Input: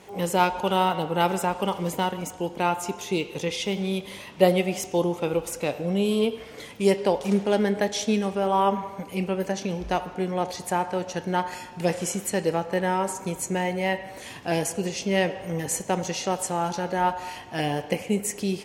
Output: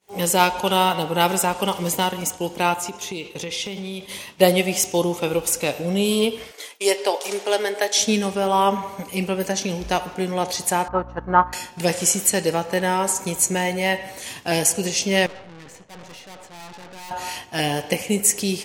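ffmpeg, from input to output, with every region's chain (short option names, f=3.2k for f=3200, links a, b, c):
-filter_complex "[0:a]asettb=1/sr,asplit=3[a][b][c];[a]atrim=end=2.744[d];[b]atrim=start=2.74:end=4.09,asetpts=PTS-STARTPTS,afade=t=in:d=0.004:c=qsin,afade=t=out:st=1.346:d=0.004:c=qsin,agate=range=-33dB:threshold=-37dB:ratio=3:release=100:detection=peak,acompressor=threshold=-30dB:ratio=5:attack=3.2:release=140:knee=1:detection=peak,highshelf=f=5.5k:g=-6.5[e];[c]atrim=start=4.086[f];[d][e]acrossfade=d=0.004:c1=hsin:c2=qsin[g];[g][f]acrossfade=d=0.004:c1=qsin:c2=hsin,asettb=1/sr,asplit=3[h][i][j];[h]atrim=end=6.514[k];[i]atrim=start=6.51:end=7.98,asetpts=PTS-STARTPTS,afade=t=in:d=0.004:c=qsin,afade=t=out:st=1.466:d=0.004:c=qsin,highpass=f=380:w=0.5412,highpass=f=380:w=1.3066,bandreject=f=520:w=13[l];[j]atrim=start=7.976[m];[k][l]acrossfade=d=0.004:c1=hsin:c2=qsin[n];[n][m]acrossfade=d=0.004:c1=qsin:c2=hsin,asettb=1/sr,asplit=3[o][p][q];[o]atrim=end=10.884[r];[p]atrim=start=10.88:end=11.53,asetpts=PTS-STARTPTS,afade=t=in:d=0.004:c=qsin,afade=t=out:st=0.646:d=0.004:c=qsin,agate=range=-12dB:threshold=-28dB:ratio=16:release=100:detection=peak,lowpass=f=1.2k:t=q:w=5.5,aeval=exprs='val(0)+0.01*(sin(2*PI*60*n/s)+sin(2*PI*2*60*n/s)/2+sin(2*PI*3*60*n/s)/3+sin(2*PI*4*60*n/s)/4+sin(2*PI*5*60*n/s)/5)':c=same[s];[q]atrim=start=11.526[t];[r][s]acrossfade=d=0.004:c1=hsin:c2=qsin[u];[u][t]acrossfade=d=0.004:c1=qsin:c2=hsin,asettb=1/sr,asplit=3[v][w][x];[v]atrim=end=15.264[y];[w]atrim=start=15.26:end=17.11,asetpts=PTS-STARTPTS,afade=t=in:d=0.004:c=qsin,afade=t=out:st=1.846:d=0.004:c=qsin,lowpass=2.3k,aeval=exprs='(tanh(100*val(0)+0.7)-tanh(0.7))/100':c=same[z];[x]atrim=start=17.106[aa];[y][z]acrossfade=d=0.004:c1=hsin:c2=qsin[ab];[ab][aa]acrossfade=d=0.004:c1=qsin:c2=hsin,agate=range=-33dB:threshold=-37dB:ratio=3:detection=peak,highshelf=f=3k:g=11.5,volume=2.5dB"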